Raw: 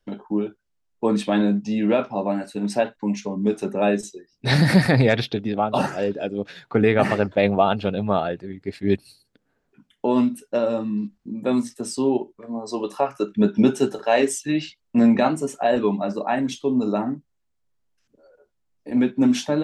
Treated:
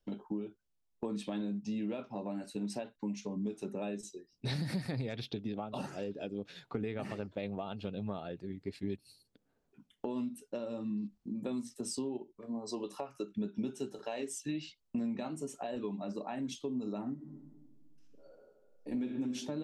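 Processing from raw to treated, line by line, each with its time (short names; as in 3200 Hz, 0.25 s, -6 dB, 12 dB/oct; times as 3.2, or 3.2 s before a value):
17.13–19.05 reverb throw, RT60 1.6 s, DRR 0.5 dB
whole clip: bell 1700 Hz -6.5 dB 0.9 oct; compressor 6:1, threshold -27 dBFS; dynamic EQ 710 Hz, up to -5 dB, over -46 dBFS, Q 1; gain -6 dB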